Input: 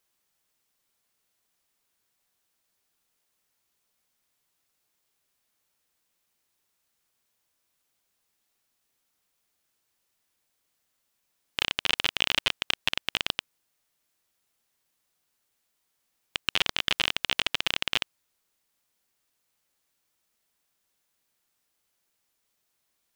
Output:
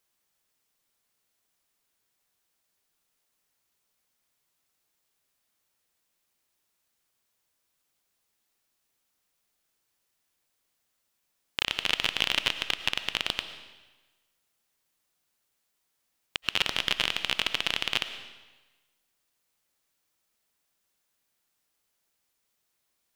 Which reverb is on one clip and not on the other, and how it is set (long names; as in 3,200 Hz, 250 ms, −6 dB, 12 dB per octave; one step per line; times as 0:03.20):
comb and all-pass reverb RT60 1.2 s, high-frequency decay 0.95×, pre-delay 65 ms, DRR 10.5 dB
level −1 dB